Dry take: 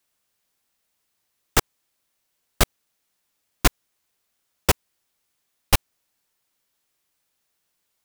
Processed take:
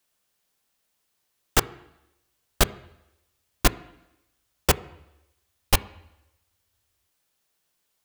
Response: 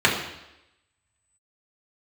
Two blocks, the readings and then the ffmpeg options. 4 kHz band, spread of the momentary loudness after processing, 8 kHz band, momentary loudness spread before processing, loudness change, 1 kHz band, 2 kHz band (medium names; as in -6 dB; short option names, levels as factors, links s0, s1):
-1.0 dB, 2 LU, -1.5 dB, 1 LU, -1.5 dB, -1.0 dB, -1.5 dB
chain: -filter_complex "[0:a]asoftclip=type=tanh:threshold=0.473,asplit=2[s0][s1];[1:a]atrim=start_sample=2205,highshelf=f=4000:g=-11.5[s2];[s1][s2]afir=irnorm=-1:irlink=0,volume=0.0266[s3];[s0][s3]amix=inputs=2:normalize=0"